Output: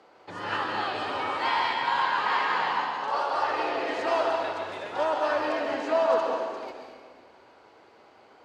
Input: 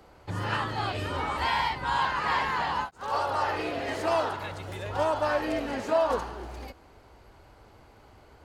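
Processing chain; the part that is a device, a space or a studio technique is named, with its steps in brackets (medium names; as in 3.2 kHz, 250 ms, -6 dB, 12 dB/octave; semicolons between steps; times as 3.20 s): supermarket ceiling speaker (band-pass 320–5400 Hz; reverberation RT60 1.6 s, pre-delay 118 ms, DRR 2 dB)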